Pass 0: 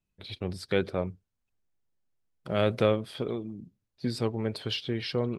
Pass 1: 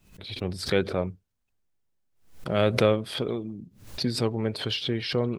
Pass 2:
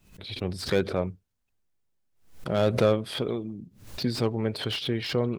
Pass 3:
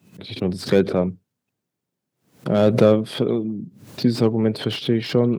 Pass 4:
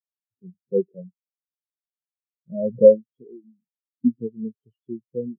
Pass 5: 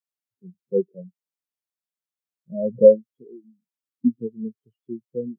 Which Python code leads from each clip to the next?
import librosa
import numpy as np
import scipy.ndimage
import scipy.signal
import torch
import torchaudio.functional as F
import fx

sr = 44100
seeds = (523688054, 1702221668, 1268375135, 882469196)

y1 = fx.pre_swell(x, sr, db_per_s=110.0)
y1 = F.gain(torch.from_numpy(y1), 2.5).numpy()
y2 = fx.slew_limit(y1, sr, full_power_hz=130.0)
y3 = scipy.signal.sosfilt(scipy.signal.butter(4, 110.0, 'highpass', fs=sr, output='sos'), y2)
y3 = fx.peak_eq(y3, sr, hz=210.0, db=8.5, octaves=3.0)
y3 = F.gain(torch.from_numpy(y3), 2.0).numpy()
y4 = fx.spectral_expand(y3, sr, expansion=4.0)
y5 = scipy.signal.sosfilt(scipy.signal.butter(2, 110.0, 'highpass', fs=sr, output='sos'), y4)